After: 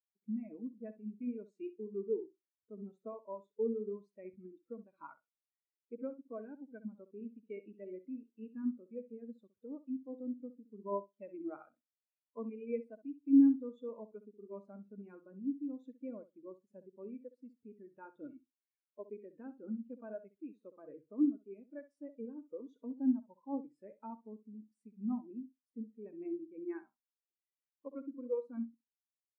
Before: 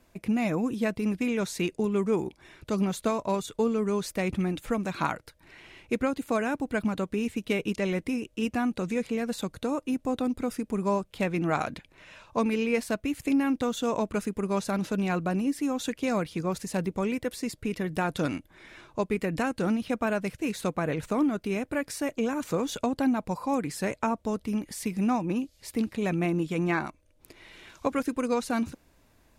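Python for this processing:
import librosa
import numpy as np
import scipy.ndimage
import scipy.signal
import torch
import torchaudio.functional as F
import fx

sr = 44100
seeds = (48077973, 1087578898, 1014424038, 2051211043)

y = scipy.signal.sosfilt(scipy.signal.butter(2, 97.0, 'highpass', fs=sr, output='sos'), x)
y = fx.peak_eq(y, sr, hz=170.0, db=-13.0, octaves=0.36)
y = fx.notch(y, sr, hz=720.0, q=12.0)
y = fx.echo_feedback(y, sr, ms=65, feedback_pct=32, wet_db=-6.5)
y = fx.spectral_expand(y, sr, expansion=2.5)
y = F.gain(torch.from_numpy(y), -4.5).numpy()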